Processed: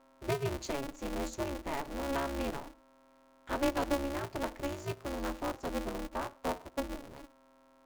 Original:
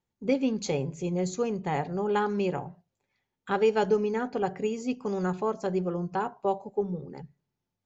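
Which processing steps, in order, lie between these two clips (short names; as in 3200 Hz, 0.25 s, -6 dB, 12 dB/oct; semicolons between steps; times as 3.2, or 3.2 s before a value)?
buzz 400 Hz, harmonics 3, -56 dBFS -4 dB/oct; polarity switched at an audio rate 140 Hz; gain -7.5 dB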